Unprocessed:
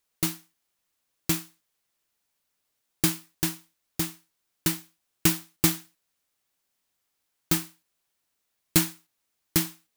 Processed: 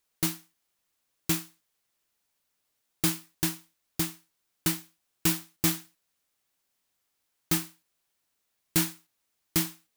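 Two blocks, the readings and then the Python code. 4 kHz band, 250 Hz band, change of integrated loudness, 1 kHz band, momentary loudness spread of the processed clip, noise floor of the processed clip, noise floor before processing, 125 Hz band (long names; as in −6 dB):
−2.0 dB, −2.5 dB, −2.0 dB, −2.0 dB, 11 LU, −79 dBFS, −79 dBFS, −2.5 dB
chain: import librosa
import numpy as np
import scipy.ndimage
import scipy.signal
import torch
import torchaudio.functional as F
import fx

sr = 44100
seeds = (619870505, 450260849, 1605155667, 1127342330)

y = np.clip(x, -10.0 ** (-18.5 / 20.0), 10.0 ** (-18.5 / 20.0))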